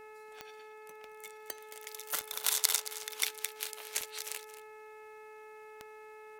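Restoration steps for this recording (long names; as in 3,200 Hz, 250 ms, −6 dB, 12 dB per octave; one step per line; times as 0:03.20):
click removal
hum removal 430.8 Hz, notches 6
echo removal 223 ms −14.5 dB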